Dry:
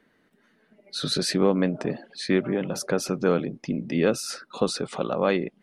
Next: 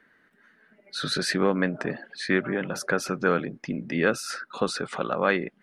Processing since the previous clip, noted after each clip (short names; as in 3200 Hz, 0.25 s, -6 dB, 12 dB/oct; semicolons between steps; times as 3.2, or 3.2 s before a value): bell 1600 Hz +12 dB 0.94 oct; gain -3 dB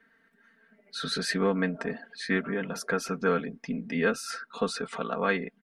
comb 4.4 ms, depth 82%; gain -5.5 dB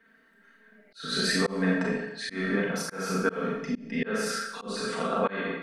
Schroeder reverb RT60 0.75 s, combs from 29 ms, DRR -2.5 dB; auto swell 0.261 s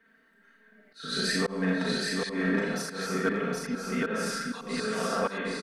hard clip -17 dBFS, distortion -27 dB; on a send: feedback echo 0.77 s, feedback 15%, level -3 dB; on the sum: gain -2 dB